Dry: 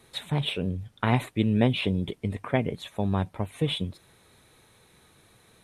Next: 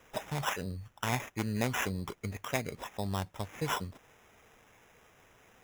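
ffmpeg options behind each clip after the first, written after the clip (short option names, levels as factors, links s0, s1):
-filter_complex "[0:a]equalizer=f=210:w=0.32:g=-10,asplit=2[s0][s1];[s1]alimiter=limit=0.0708:level=0:latency=1:release=389,volume=0.708[s2];[s0][s2]amix=inputs=2:normalize=0,acrusher=samples=10:mix=1:aa=0.000001,volume=0.596"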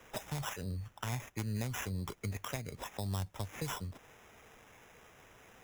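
-filter_complex "[0:a]acrossover=split=120|4200[s0][s1][s2];[s1]acompressor=threshold=0.00794:ratio=6[s3];[s2]alimiter=level_in=2.51:limit=0.0631:level=0:latency=1:release=318,volume=0.398[s4];[s0][s3][s4]amix=inputs=3:normalize=0,volume=1.33"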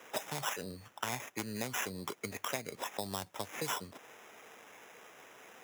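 -af "highpass=280,volume=1.68"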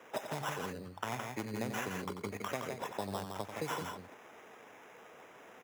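-filter_complex "[0:a]highshelf=f=2400:g=-10.5,asplit=2[s0][s1];[s1]aecho=0:1:90.38|166.2:0.355|0.562[s2];[s0][s2]amix=inputs=2:normalize=0,volume=1.12"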